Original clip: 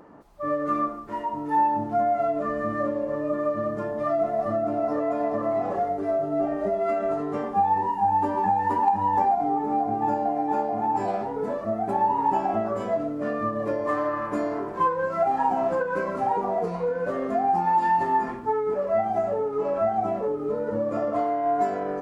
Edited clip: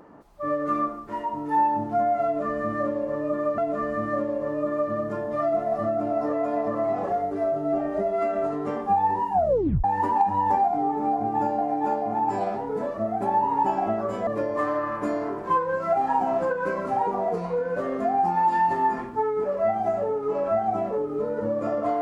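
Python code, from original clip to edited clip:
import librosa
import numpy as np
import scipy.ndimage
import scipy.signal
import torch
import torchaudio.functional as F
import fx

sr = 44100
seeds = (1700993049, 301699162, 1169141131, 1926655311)

y = fx.edit(x, sr, fx.repeat(start_s=2.25, length_s=1.33, count=2),
    fx.tape_stop(start_s=8.0, length_s=0.51),
    fx.cut(start_s=12.94, length_s=0.63), tone=tone)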